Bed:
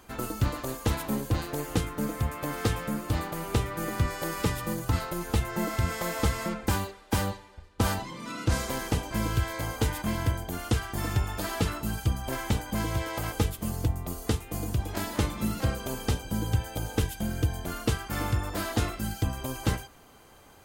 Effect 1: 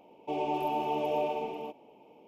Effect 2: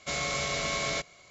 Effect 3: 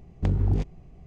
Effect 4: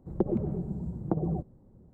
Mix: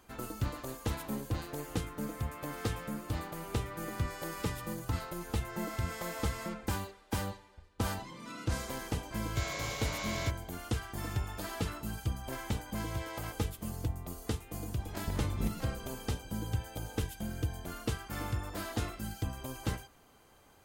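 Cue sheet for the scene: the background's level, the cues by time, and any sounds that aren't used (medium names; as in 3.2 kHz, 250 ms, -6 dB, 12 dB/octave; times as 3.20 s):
bed -7.5 dB
9.29 s: add 2 -8.5 dB
14.85 s: add 3 -6.5 dB + compressor with a negative ratio -27 dBFS
not used: 1, 4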